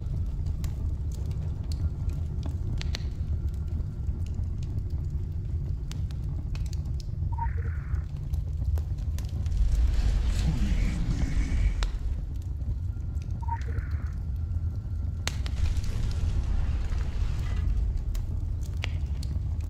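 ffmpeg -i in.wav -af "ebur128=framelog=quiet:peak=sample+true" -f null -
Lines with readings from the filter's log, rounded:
Integrated loudness:
  I:         -31.7 LUFS
  Threshold: -41.6 LUFS
Loudness range:
  LRA:         3.8 LU
  Threshold: -51.6 LUFS
  LRA low:   -33.0 LUFS
  LRA high:  -29.2 LUFS
Sample peak:
  Peak:       -5.5 dBFS
True peak:
  Peak:       -5.5 dBFS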